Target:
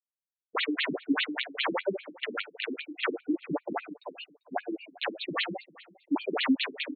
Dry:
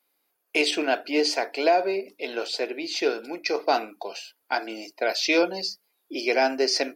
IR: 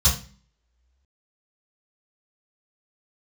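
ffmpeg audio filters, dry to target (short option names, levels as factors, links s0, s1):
-filter_complex "[0:a]afftdn=nr=16:nf=-39,agate=range=0.00112:threshold=0.00891:ratio=16:detection=peak,aemphasis=mode=reproduction:type=bsi,acrossover=split=3700[s0][s1];[s1]acompressor=threshold=0.00891:ratio=4:attack=1:release=60[s2];[s0][s2]amix=inputs=2:normalize=0,bass=f=250:g=8,treble=f=4000:g=1,aecho=1:1:6.7:0.88,asplit=2[s3][s4];[s4]acompressor=threshold=0.0398:ratio=6,volume=1.06[s5];[s3][s5]amix=inputs=2:normalize=0,aeval=exprs='(mod(3.98*val(0)+1,2)-1)/3.98':c=same,flanger=delay=6.9:depth=4.6:regen=43:speed=1.4:shape=sinusoidal,asplit=2[s6][s7];[s7]aecho=0:1:394|788:0.0794|0.0278[s8];[s6][s8]amix=inputs=2:normalize=0,aresample=11025,aresample=44100,afftfilt=real='re*between(b*sr/1024,230*pow(3200/230,0.5+0.5*sin(2*PI*5*pts/sr))/1.41,230*pow(3200/230,0.5+0.5*sin(2*PI*5*pts/sr))*1.41)':imag='im*between(b*sr/1024,230*pow(3200/230,0.5+0.5*sin(2*PI*5*pts/sr))/1.41,230*pow(3200/230,0.5+0.5*sin(2*PI*5*pts/sr))*1.41)':win_size=1024:overlap=0.75"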